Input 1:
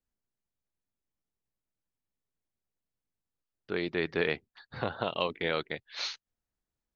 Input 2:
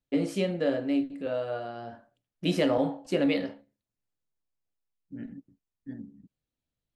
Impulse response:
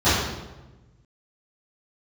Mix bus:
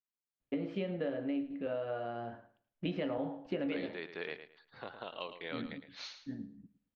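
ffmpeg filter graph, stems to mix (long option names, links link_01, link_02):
-filter_complex "[0:a]highpass=frequency=330:poles=1,volume=-11dB,asplit=2[link_01][link_02];[link_02]volume=-10.5dB[link_03];[1:a]lowpass=frequency=3200:width=0.5412,lowpass=frequency=3200:width=1.3066,acompressor=threshold=-31dB:ratio=5,adelay=400,volume=-2dB,asplit=2[link_04][link_05];[link_05]volume=-16.5dB[link_06];[link_03][link_06]amix=inputs=2:normalize=0,aecho=0:1:110|220|330|440:1|0.23|0.0529|0.0122[link_07];[link_01][link_04][link_07]amix=inputs=3:normalize=0"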